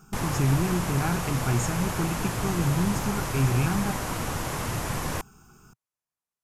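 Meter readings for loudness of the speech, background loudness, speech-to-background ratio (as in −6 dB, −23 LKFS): −28.0 LKFS, −30.5 LKFS, 2.5 dB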